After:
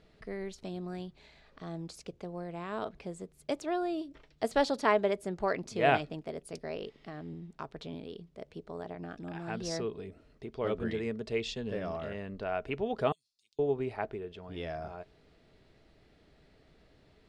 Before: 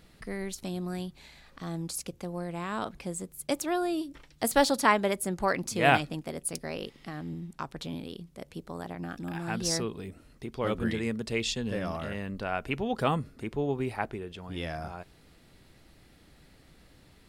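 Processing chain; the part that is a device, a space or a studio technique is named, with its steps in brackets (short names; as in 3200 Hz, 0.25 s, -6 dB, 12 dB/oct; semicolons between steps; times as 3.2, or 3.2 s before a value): 13.12–13.59 inverse Chebyshev high-pass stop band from 1700 Hz, stop band 50 dB; inside a cardboard box (LPF 5000 Hz 12 dB/oct; small resonant body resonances 430/630 Hz, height 9 dB, ringing for 40 ms); gain -6 dB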